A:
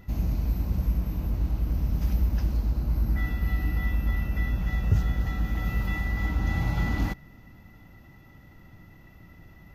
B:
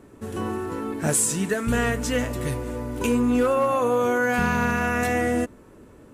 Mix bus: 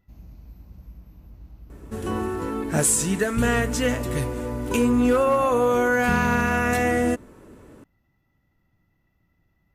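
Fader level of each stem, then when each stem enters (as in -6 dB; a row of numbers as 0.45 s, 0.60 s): -18.0 dB, +1.5 dB; 0.00 s, 1.70 s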